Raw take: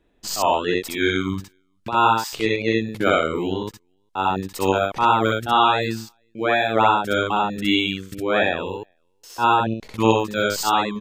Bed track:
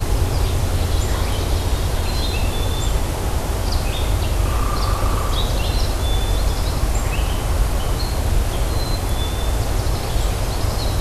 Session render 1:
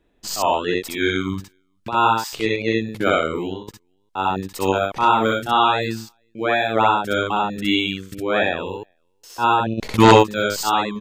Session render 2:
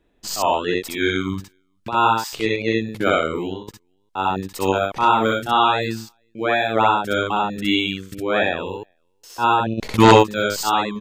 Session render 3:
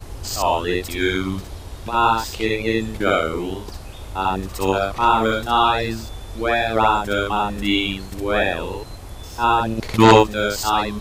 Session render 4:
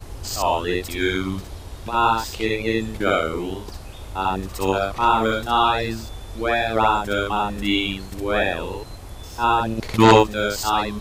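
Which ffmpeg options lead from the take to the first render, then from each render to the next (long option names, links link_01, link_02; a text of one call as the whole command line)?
ffmpeg -i in.wav -filter_complex "[0:a]asettb=1/sr,asplit=3[link_01][link_02][link_03];[link_01]atrim=end=4.974[link_04];[link_02]atrim=start=4.97:end=5.48,asetpts=PTS-STARTPTS,afade=type=in:duration=0.004:curve=qsin,afade=type=out:start_time=0.506:duration=0.004:curve=qsin,asplit=2[link_05][link_06];[link_06]adelay=31,volume=-7dB[link_07];[link_05][link_07]amix=inputs=2:normalize=0,atrim=end_sample=22491[link_08];[link_03]atrim=start=5.476[link_09];[link_04][link_08]acrossfade=duration=0.004:curve1=hsin:curve2=qsin[link_10];[link_10][link_09]acrossfade=duration=0.004:curve1=qsin:curve2=hsin,asplit=3[link_11][link_12][link_13];[link_11]afade=type=out:start_time=9.77:duration=0.02[link_14];[link_12]aeval=exprs='0.708*sin(PI/2*2.24*val(0)/0.708)':channel_layout=same,afade=type=in:start_time=9.77:duration=0.02,afade=type=out:start_time=10.22:duration=0.02[link_15];[link_13]afade=type=in:start_time=10.22:duration=0.02[link_16];[link_14][link_15][link_16]amix=inputs=3:normalize=0,asplit=2[link_17][link_18];[link_17]atrim=end=3.68,asetpts=PTS-STARTPTS,afade=type=out:start_time=3.27:duration=0.41:curve=qsin:silence=0.16788[link_19];[link_18]atrim=start=3.68,asetpts=PTS-STARTPTS,afade=type=in:duration=0.004:curve=hsin:silence=0.16788[link_20];[link_19][link_20]concat=n=2:v=0:a=1" out.wav
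ffmpeg -i in.wav -af anull out.wav
ffmpeg -i in.wav -i bed.wav -filter_complex "[1:a]volume=-15dB[link_01];[0:a][link_01]amix=inputs=2:normalize=0" out.wav
ffmpeg -i in.wav -af "volume=-1.5dB" out.wav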